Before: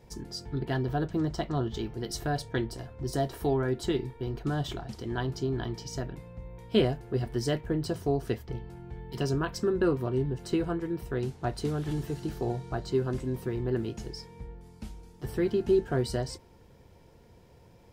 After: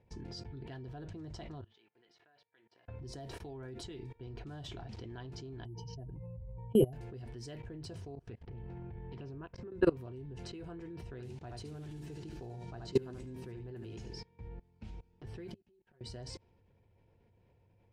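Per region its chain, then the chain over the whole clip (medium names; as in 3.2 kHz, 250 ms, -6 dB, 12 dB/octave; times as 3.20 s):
1.61–2.88 s: band-pass 150–2200 Hz + differentiator
5.65–6.93 s: spectral contrast enhancement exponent 2 + careless resampling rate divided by 4×, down none, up hold + small resonant body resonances 840/2900 Hz, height 14 dB, ringing for 25 ms
8.15–9.72 s: treble shelf 3.1 kHz -10 dB + compression, threshold -41 dBFS + loudspeaker Doppler distortion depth 0.13 ms
11.10–14.20 s: treble shelf 9.3 kHz +7.5 dB + delay 74 ms -7 dB
15.48–16.01 s: inverted gate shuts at -26 dBFS, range -36 dB + comb 5.4 ms, depth 61% + tape noise reduction on one side only encoder only
whole clip: level-controlled noise filter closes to 2.8 kHz, open at -23 dBFS; graphic EQ with 31 bands 100 Hz +11 dB, 1.25 kHz -4 dB, 2.5 kHz +5 dB; level held to a coarse grid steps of 23 dB; trim +1 dB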